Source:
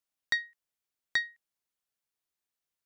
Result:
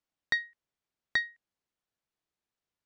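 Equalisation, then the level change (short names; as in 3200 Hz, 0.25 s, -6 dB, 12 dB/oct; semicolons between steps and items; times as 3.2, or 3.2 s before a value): LPF 7200 Hz; tilt -2 dB/oct; low shelf 62 Hz -8.5 dB; +2.5 dB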